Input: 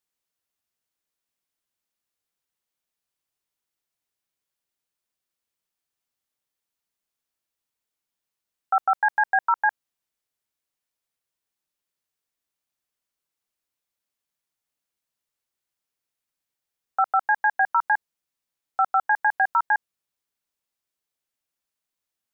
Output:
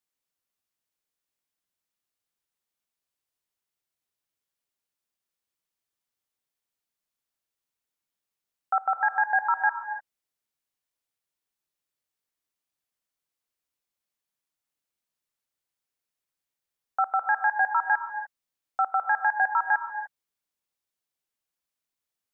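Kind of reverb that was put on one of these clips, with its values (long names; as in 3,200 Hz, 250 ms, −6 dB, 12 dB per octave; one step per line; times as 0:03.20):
reverb whose tail is shaped and stops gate 320 ms rising, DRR 8 dB
level −3 dB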